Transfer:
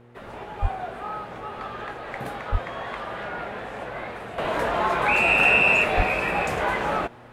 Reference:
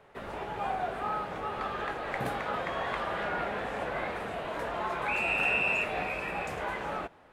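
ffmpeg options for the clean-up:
ffmpeg -i in.wav -filter_complex "[0:a]bandreject=frequency=119.7:width_type=h:width=4,bandreject=frequency=239.4:width_type=h:width=4,bandreject=frequency=359.1:width_type=h:width=4,bandreject=frequency=478.8:width_type=h:width=4,asplit=3[link_01][link_02][link_03];[link_01]afade=type=out:start_time=0.61:duration=0.02[link_04];[link_02]highpass=frequency=140:width=0.5412,highpass=frequency=140:width=1.3066,afade=type=in:start_time=0.61:duration=0.02,afade=type=out:start_time=0.73:duration=0.02[link_05];[link_03]afade=type=in:start_time=0.73:duration=0.02[link_06];[link_04][link_05][link_06]amix=inputs=3:normalize=0,asplit=3[link_07][link_08][link_09];[link_07]afade=type=out:start_time=2.51:duration=0.02[link_10];[link_08]highpass=frequency=140:width=0.5412,highpass=frequency=140:width=1.3066,afade=type=in:start_time=2.51:duration=0.02,afade=type=out:start_time=2.63:duration=0.02[link_11];[link_09]afade=type=in:start_time=2.63:duration=0.02[link_12];[link_10][link_11][link_12]amix=inputs=3:normalize=0,asplit=3[link_13][link_14][link_15];[link_13]afade=type=out:start_time=5.96:duration=0.02[link_16];[link_14]highpass=frequency=140:width=0.5412,highpass=frequency=140:width=1.3066,afade=type=in:start_time=5.96:duration=0.02,afade=type=out:start_time=6.08:duration=0.02[link_17];[link_15]afade=type=in:start_time=6.08:duration=0.02[link_18];[link_16][link_17][link_18]amix=inputs=3:normalize=0,asetnsamples=nb_out_samples=441:pad=0,asendcmd='4.38 volume volume -10dB',volume=0dB" out.wav

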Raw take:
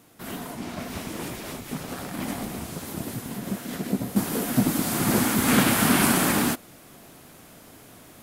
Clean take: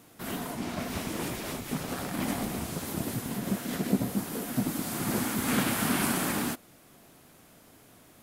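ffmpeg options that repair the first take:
ffmpeg -i in.wav -af "asetnsamples=nb_out_samples=441:pad=0,asendcmd='4.16 volume volume -7.5dB',volume=0dB" out.wav

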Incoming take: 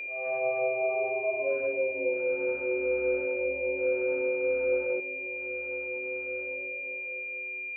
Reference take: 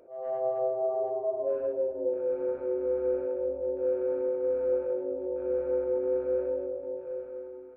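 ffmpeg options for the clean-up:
ffmpeg -i in.wav -af "bandreject=frequency=2400:width=30,asetnsamples=nb_out_samples=441:pad=0,asendcmd='5 volume volume 10dB',volume=0dB" out.wav

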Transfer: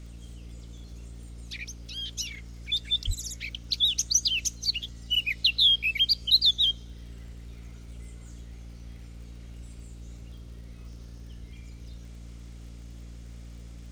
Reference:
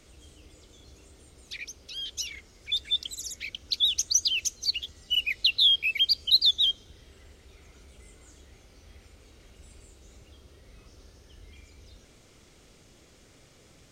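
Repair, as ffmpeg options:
ffmpeg -i in.wav -filter_complex "[0:a]adeclick=threshold=4,bandreject=frequency=57.7:width_type=h:width=4,bandreject=frequency=115.4:width_type=h:width=4,bandreject=frequency=173.1:width_type=h:width=4,bandreject=frequency=230.8:width_type=h:width=4,bandreject=frequency=288.5:width_type=h:width=4,asplit=3[link_01][link_02][link_03];[link_01]afade=type=out:start_time=3.06:duration=0.02[link_04];[link_02]highpass=frequency=140:width=0.5412,highpass=frequency=140:width=1.3066,afade=type=in:start_time=3.06:duration=0.02,afade=type=out:start_time=3.18:duration=0.02[link_05];[link_03]afade=type=in:start_time=3.18:duration=0.02[link_06];[link_04][link_05][link_06]amix=inputs=3:normalize=0" out.wav

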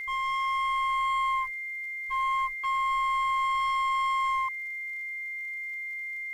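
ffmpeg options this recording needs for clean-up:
ffmpeg -i in.wav -af "adeclick=threshold=4,bandreject=frequency=2100:width=30,agate=range=-21dB:threshold=-28dB" out.wav

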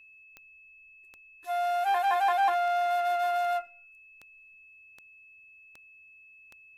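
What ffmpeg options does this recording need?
ffmpeg -i in.wav -af "adeclick=threshold=4,bandreject=frequency=2600:width=30" out.wav

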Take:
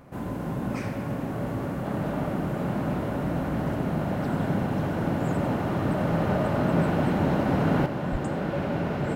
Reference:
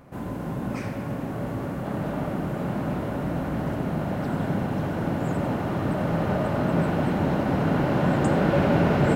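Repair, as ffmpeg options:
ffmpeg -i in.wav -filter_complex "[0:a]asplit=3[link_01][link_02][link_03];[link_01]afade=type=out:start_time=8.11:duration=0.02[link_04];[link_02]highpass=frequency=140:width=0.5412,highpass=frequency=140:width=1.3066,afade=type=in:start_time=8.11:duration=0.02,afade=type=out:start_time=8.23:duration=0.02[link_05];[link_03]afade=type=in:start_time=8.23:duration=0.02[link_06];[link_04][link_05][link_06]amix=inputs=3:normalize=0,asetnsamples=nb_out_samples=441:pad=0,asendcmd='7.86 volume volume 7.5dB',volume=0dB" out.wav

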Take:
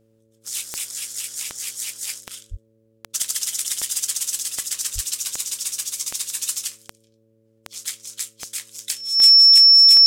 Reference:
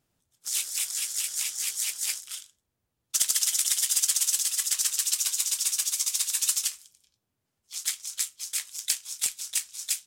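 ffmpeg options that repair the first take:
ffmpeg -i in.wav -filter_complex "[0:a]adeclick=threshold=4,bandreject=frequency=111.3:width_type=h:width=4,bandreject=frequency=222.6:width_type=h:width=4,bandreject=frequency=333.9:width_type=h:width=4,bandreject=frequency=445.2:width_type=h:width=4,bandreject=frequency=556.5:width_type=h:width=4,bandreject=frequency=5400:width=30,asplit=3[link_01][link_02][link_03];[link_01]afade=type=out:start_time=2.5:duration=0.02[link_04];[link_02]highpass=frequency=140:width=0.5412,highpass=frequency=140:width=1.3066,afade=type=in:start_time=2.5:duration=0.02,afade=type=out:start_time=2.62:duration=0.02[link_05];[link_03]afade=type=in:start_time=2.62:duration=0.02[link_06];[link_04][link_05][link_06]amix=inputs=3:normalize=0,asplit=3[link_07][link_08][link_09];[link_07]afade=type=out:start_time=4.94:duration=0.02[link_10];[link_08]highpass=frequency=140:width=0.5412,highpass=frequency=140:width=1.3066,afade=type=in:start_time=4.94:duration=0.02,afade=type=out:start_time=5.06:duration=0.02[link_11];[link_09]afade=type=in:start_time=5.06:duration=0.02[link_12];[link_10][link_11][link_12]amix=inputs=3:normalize=0" out.wav

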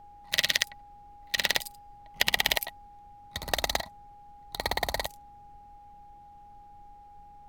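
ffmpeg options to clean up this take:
ffmpeg -i in.wav -af "bandreject=frequency=820:width=30,afftdn=noise_reduction=24:noise_floor=-51" out.wav

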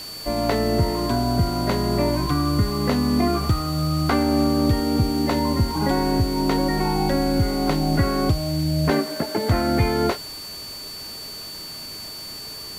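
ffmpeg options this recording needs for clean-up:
ffmpeg -i in.wav -af "bandreject=frequency=4500:width=30,afftdn=noise_reduction=30:noise_floor=-35" out.wav

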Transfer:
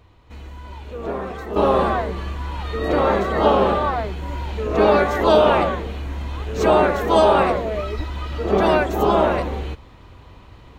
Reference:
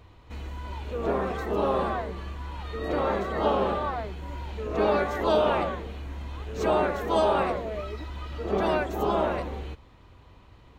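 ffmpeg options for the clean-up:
ffmpeg -i in.wav -filter_complex "[0:a]asplit=3[link_01][link_02][link_03];[link_01]afade=type=out:start_time=7.96:duration=0.02[link_04];[link_02]highpass=frequency=140:width=0.5412,highpass=frequency=140:width=1.3066,afade=type=in:start_time=7.96:duration=0.02,afade=type=out:start_time=8.08:duration=0.02[link_05];[link_03]afade=type=in:start_time=8.08:duration=0.02[link_06];[link_04][link_05][link_06]amix=inputs=3:normalize=0,asetnsamples=nb_out_samples=441:pad=0,asendcmd='1.56 volume volume -8.5dB',volume=0dB" out.wav

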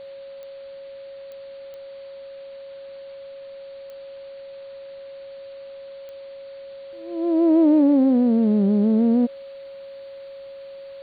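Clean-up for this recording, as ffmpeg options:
ffmpeg -i in.wav -af "adeclick=threshold=4,bandreject=frequency=550:width=30,afftdn=noise_reduction=27:noise_floor=-39" out.wav

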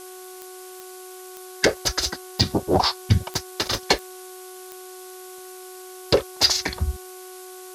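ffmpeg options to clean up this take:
ffmpeg -i in.wav -af "adeclick=threshold=4,bandreject=frequency=369.8:width_type=h:width=4,bandreject=frequency=739.6:width_type=h:width=4,bandreject=frequency=1109.4:width_type=h:width=4,bandreject=frequency=1479.2:width_type=h:width=4,afftdn=noise_reduction=28:noise_floor=-41" out.wav

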